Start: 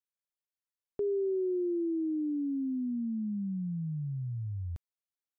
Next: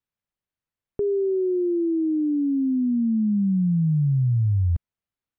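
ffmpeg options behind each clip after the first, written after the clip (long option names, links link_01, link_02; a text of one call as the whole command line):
ffmpeg -i in.wav -af "bass=frequency=250:gain=10,treble=frequency=4000:gain=-12,volume=6dB" out.wav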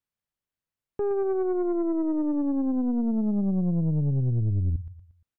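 ffmpeg -i in.wav -af "aecho=1:1:116|232|348|464:0.2|0.0758|0.0288|0.0109,aeval=exprs='(tanh(11.2*val(0)+0.45)-tanh(0.45))/11.2':channel_layout=same" out.wav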